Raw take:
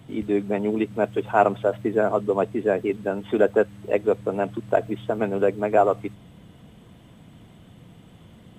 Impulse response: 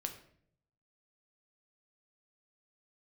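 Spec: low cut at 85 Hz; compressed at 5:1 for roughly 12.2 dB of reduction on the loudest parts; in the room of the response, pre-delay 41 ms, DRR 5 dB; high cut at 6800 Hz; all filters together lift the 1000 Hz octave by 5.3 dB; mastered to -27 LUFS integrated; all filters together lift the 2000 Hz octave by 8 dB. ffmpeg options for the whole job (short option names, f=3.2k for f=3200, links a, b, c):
-filter_complex "[0:a]highpass=85,lowpass=6.8k,equalizer=f=1k:t=o:g=6.5,equalizer=f=2k:t=o:g=8.5,acompressor=threshold=-22dB:ratio=5,asplit=2[a][b];[1:a]atrim=start_sample=2205,adelay=41[c];[b][c]afir=irnorm=-1:irlink=0,volume=-4dB[d];[a][d]amix=inputs=2:normalize=0,volume=-0.5dB"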